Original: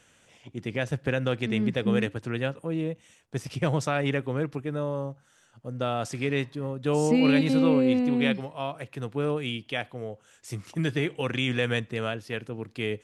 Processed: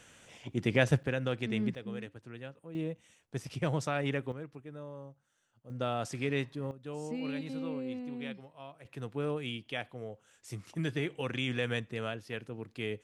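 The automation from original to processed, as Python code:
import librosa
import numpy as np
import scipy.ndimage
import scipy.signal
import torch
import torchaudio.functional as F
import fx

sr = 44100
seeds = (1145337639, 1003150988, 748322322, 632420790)

y = fx.gain(x, sr, db=fx.steps((0.0, 3.0), (1.03, -6.0), (1.75, -16.0), (2.75, -6.0), (4.32, -15.0), (5.7, -5.0), (6.71, -16.0), (8.85, -6.5)))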